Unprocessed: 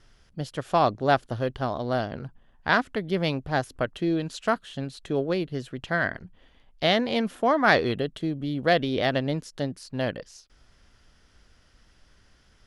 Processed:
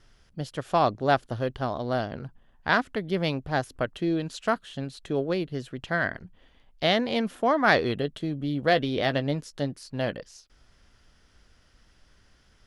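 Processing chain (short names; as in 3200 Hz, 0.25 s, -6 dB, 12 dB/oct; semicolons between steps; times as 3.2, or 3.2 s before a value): 7.97–10.13 doubler 14 ms -12.5 dB; gain -1 dB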